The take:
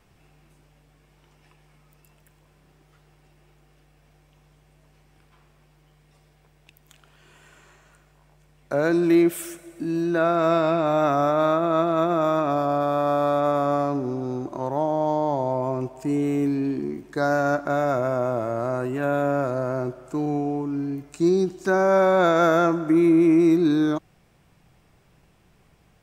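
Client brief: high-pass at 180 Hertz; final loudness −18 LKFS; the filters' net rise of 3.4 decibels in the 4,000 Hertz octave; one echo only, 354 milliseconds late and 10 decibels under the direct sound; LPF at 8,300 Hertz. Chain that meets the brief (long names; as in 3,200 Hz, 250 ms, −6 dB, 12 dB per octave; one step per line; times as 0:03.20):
high-pass filter 180 Hz
low-pass filter 8,300 Hz
parametric band 4,000 Hz +4 dB
single-tap delay 354 ms −10 dB
level +4.5 dB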